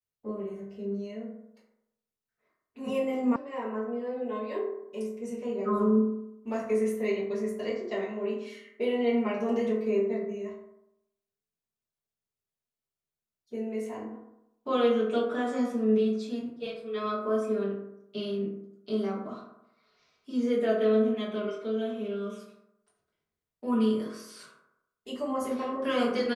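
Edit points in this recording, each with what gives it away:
3.36 sound cut off

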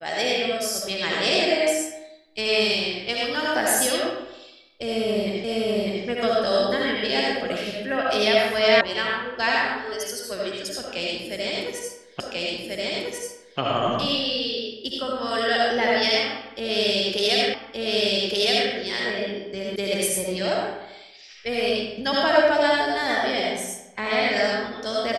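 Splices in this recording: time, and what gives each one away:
5.44 repeat of the last 0.6 s
8.81 sound cut off
12.2 repeat of the last 1.39 s
17.54 repeat of the last 1.17 s
19.76 sound cut off

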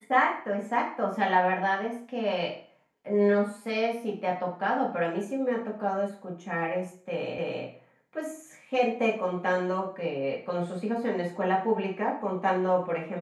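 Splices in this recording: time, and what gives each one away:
7.38 repeat of the last 0.27 s

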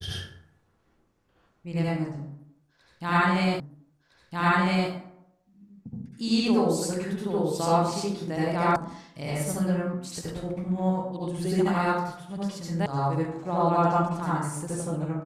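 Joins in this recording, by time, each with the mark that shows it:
3.6 repeat of the last 1.31 s
8.76 sound cut off
12.86 sound cut off

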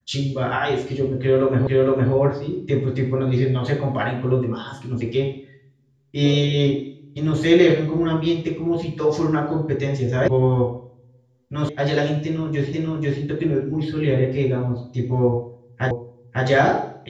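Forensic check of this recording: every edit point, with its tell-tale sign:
1.67 repeat of the last 0.46 s
10.28 sound cut off
11.69 sound cut off
12.73 repeat of the last 0.49 s
15.91 repeat of the last 0.55 s

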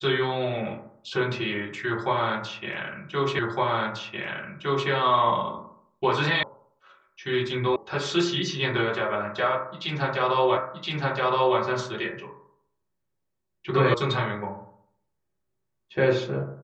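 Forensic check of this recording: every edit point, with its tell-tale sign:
3.39 repeat of the last 1.51 s
6.43 sound cut off
7.76 sound cut off
10.57 repeat of the last 1.02 s
13.94 sound cut off

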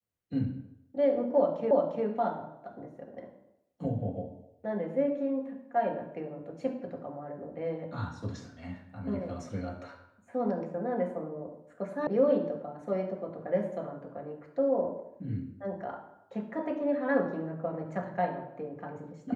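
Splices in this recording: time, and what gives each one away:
1.71 repeat of the last 0.35 s
12.07 sound cut off

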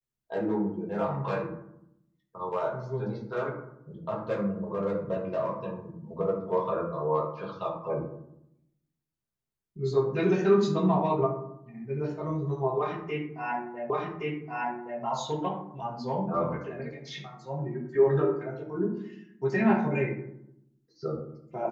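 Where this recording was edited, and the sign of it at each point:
13.9 repeat of the last 1.12 s

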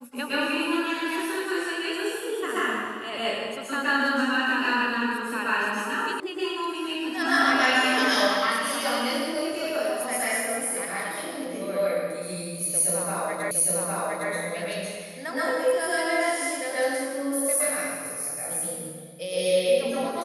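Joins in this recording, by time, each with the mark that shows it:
6.2 sound cut off
13.51 repeat of the last 0.81 s

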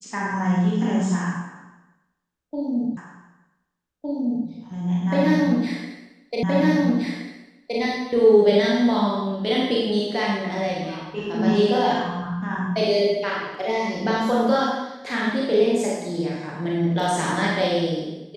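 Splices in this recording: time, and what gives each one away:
2.97 repeat of the last 1.51 s
6.43 repeat of the last 1.37 s

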